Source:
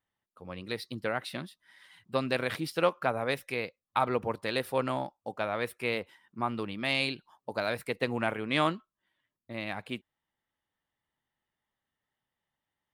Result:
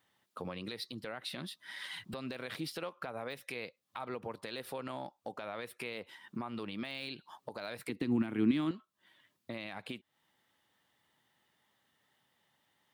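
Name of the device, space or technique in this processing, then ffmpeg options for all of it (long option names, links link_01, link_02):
broadcast voice chain: -filter_complex "[0:a]highpass=120,deesser=0.75,acompressor=threshold=-46dB:ratio=4,equalizer=frequency=3800:width_type=o:width=0.86:gain=4,alimiter=level_in=16.5dB:limit=-24dB:level=0:latency=1:release=132,volume=-16.5dB,asettb=1/sr,asplit=3[link_01][link_02][link_03];[link_01]atrim=end=7.894[link_04];[link_02]atrim=start=7.89:end=8.71,asetpts=PTS-STARTPTS,afade=type=in:duration=0.004:curve=qsin,afade=type=out:start_time=0.816:duration=0.004:curve=qsin,lowshelf=frequency=400:width_type=q:width=3:gain=9[link_05];[link_03]atrim=start=8.706[link_06];[link_04][link_05]acrossfade=duration=0.004:curve1=hsin:curve2=qsin[link_07];[link_07][link_06]acrossfade=duration=0.004:curve1=qsin:curve2=hsin,volume=11.5dB"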